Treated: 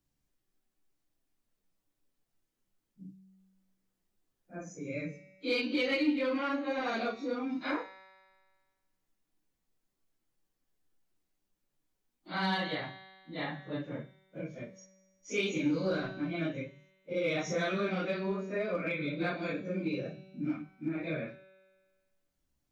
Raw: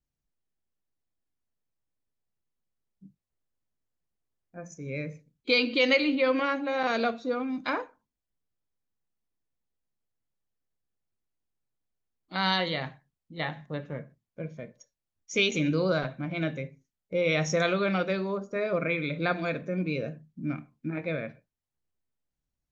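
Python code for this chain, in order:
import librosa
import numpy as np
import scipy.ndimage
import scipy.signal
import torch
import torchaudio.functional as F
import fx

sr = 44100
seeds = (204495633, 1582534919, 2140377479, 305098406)

p1 = fx.phase_scramble(x, sr, seeds[0], window_ms=100)
p2 = fx.peak_eq(p1, sr, hz=300.0, db=7.5, octaves=0.27)
p3 = fx.hum_notches(p2, sr, base_hz=50, count=3)
p4 = fx.comb_fb(p3, sr, f0_hz=190.0, decay_s=1.2, harmonics='all', damping=0.0, mix_pct=70)
p5 = np.clip(10.0 ** (32.0 / 20.0) * p4, -1.0, 1.0) / 10.0 ** (32.0 / 20.0)
p6 = p4 + (p5 * librosa.db_to_amplitude(-10.0))
p7 = fx.band_squash(p6, sr, depth_pct=40)
y = p7 * librosa.db_to_amplitude(1.5)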